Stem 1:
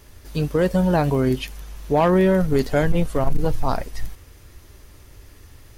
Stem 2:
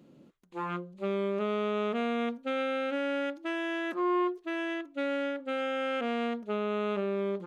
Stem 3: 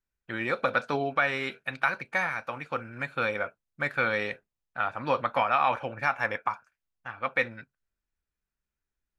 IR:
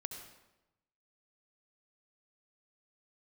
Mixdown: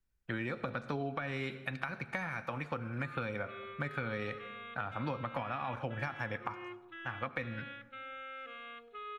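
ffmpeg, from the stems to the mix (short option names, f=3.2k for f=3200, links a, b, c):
-filter_complex "[1:a]aecho=1:1:2.4:0.92,adelay=2450,volume=-8.5dB,asplit=2[a][b];[b]volume=-16.5dB[c];[2:a]acrossover=split=290[d][e];[e]acompressor=threshold=-30dB:ratio=6[f];[d][f]amix=inputs=2:normalize=0,volume=-3dB,asplit=2[g][h];[h]volume=-6dB[i];[a]asuperpass=centerf=2100:order=20:qfactor=0.69,alimiter=level_in=15dB:limit=-24dB:level=0:latency=1:release=150,volume=-15dB,volume=0dB[j];[3:a]atrim=start_sample=2205[k];[c][i]amix=inputs=2:normalize=0[l];[l][k]afir=irnorm=-1:irlink=0[m];[g][j][m]amix=inputs=3:normalize=0,lowshelf=f=240:g=9.5,acompressor=threshold=-34dB:ratio=4"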